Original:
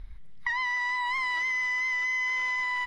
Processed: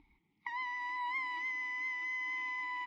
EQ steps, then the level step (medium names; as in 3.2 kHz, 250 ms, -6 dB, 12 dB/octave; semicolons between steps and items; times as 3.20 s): vowel filter u; treble shelf 4.8 kHz +11.5 dB; +5.5 dB